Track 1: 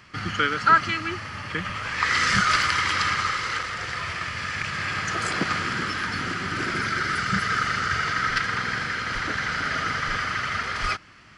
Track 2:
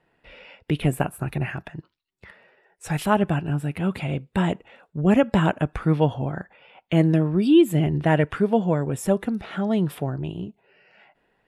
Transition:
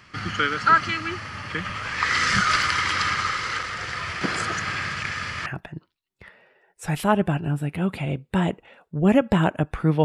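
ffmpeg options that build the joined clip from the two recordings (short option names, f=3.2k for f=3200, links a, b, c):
-filter_complex "[0:a]apad=whole_dur=10.04,atrim=end=10.04,asplit=2[a][b];[a]atrim=end=4.212[c];[b]atrim=start=4.208:end=5.462,asetpts=PTS-STARTPTS,areverse[d];[1:a]atrim=start=1.478:end=6.06[e];[c][d]acrossfade=d=0.004:c1=hsin:c2=hsin[f];[f][e]acrossfade=d=0.004:c1=hsin:c2=hsin"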